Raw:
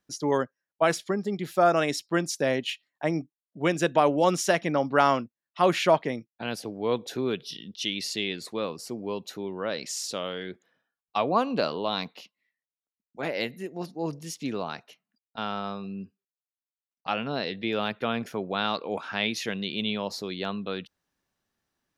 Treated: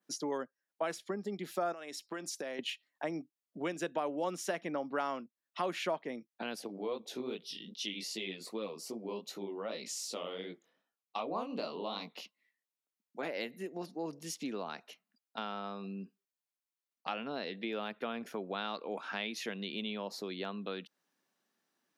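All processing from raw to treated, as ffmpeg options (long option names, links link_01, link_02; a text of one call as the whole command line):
ffmpeg -i in.wav -filter_complex "[0:a]asettb=1/sr,asplit=3[link_01][link_02][link_03];[link_01]atrim=end=1.724[link_04];[link_02]atrim=start=1.72:end=2.59,asetpts=PTS-STARTPTS,afade=type=in:duration=0.004:curve=qsin,afade=type=out:start_time=0.866:duration=0.004:curve=qsin,lowshelf=frequency=230:gain=-10.5,acompressor=threshold=-34dB:ratio=4:attack=3.2:release=140:knee=1:detection=peak[link_05];[link_03]atrim=start=2.586[link_06];[link_04][link_05]acrossfade=duration=0.004:curve1=hsin:curve2=qsin[link_07];[link_07][link_06]acrossfade=duration=0.004:curve1=qsin:curve2=hsin,asettb=1/sr,asplit=3[link_08][link_09][link_10];[link_08]atrim=end=6.674[link_11];[link_09]atrim=start=6.67:end=12.14,asetpts=PTS-STARTPTS,afade=type=in:duration=0.004:curve=qsin,afade=type=out:start_time=5.466:duration=0.004:curve=qsin,equalizer=frequency=1600:width=5.8:gain=-11.5,flanger=delay=17.5:depth=7.1:speed=2.6[link_12];[link_10]atrim=start=12.136[link_13];[link_11][link_12]acrossfade=duration=0.004:curve1=hsin:curve2=qsin[link_14];[link_14][link_13]acrossfade=duration=0.004:curve1=qsin:curve2=hsin,adynamicequalizer=threshold=0.00631:dfrequency=5100:dqfactor=0.81:tfrequency=5100:tqfactor=0.81:attack=5:release=100:ratio=0.375:range=2.5:mode=cutabove:tftype=bell,acompressor=threshold=-38dB:ratio=2.5,highpass=frequency=190:width=0.5412,highpass=frequency=190:width=1.3066" out.wav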